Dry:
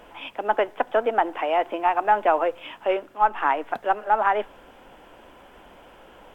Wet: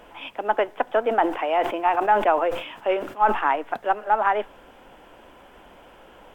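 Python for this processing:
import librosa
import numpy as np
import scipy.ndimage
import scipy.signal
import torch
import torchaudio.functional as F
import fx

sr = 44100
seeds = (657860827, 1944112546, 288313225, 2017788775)

y = fx.sustainer(x, sr, db_per_s=97.0, at=(1.06, 3.56))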